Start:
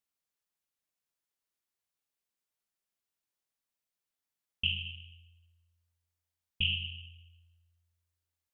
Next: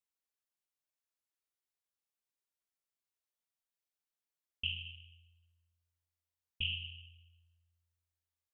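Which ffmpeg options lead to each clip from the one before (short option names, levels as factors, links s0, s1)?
-af "equalizer=f=170:t=o:w=0.47:g=-9,volume=0.501"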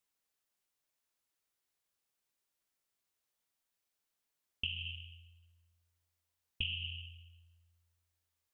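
-af "acompressor=threshold=0.01:ratio=10,volume=2.11"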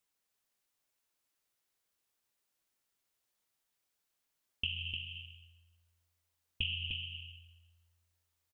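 -af "aecho=1:1:302:0.531,volume=1.19"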